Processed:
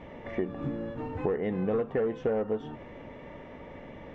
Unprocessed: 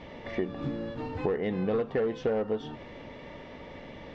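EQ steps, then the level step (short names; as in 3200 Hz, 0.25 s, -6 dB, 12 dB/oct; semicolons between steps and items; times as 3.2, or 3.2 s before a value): bell 4500 Hz -14.5 dB 1 oct; 0.0 dB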